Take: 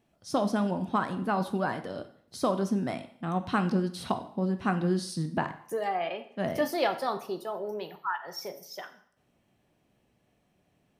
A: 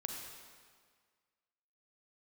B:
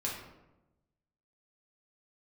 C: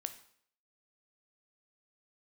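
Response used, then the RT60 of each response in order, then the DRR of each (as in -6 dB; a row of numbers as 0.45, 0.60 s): C; 1.7, 1.0, 0.60 s; 1.5, -4.0, 8.5 dB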